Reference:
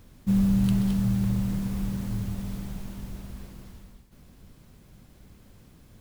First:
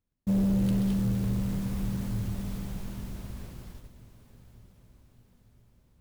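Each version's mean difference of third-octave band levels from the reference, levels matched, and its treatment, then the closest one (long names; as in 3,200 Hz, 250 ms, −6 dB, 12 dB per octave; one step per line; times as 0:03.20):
3.0 dB: soft clipping −20.5 dBFS, distortion −15 dB
noise gate −45 dBFS, range −33 dB
feedback delay with all-pass diffusion 921 ms, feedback 50%, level −16 dB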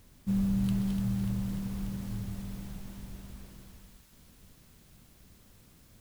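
2.0 dB: background noise white −60 dBFS
feedback echo with a high-pass in the loop 294 ms, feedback 81%, high-pass 900 Hz, level −9 dB
level −6.5 dB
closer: second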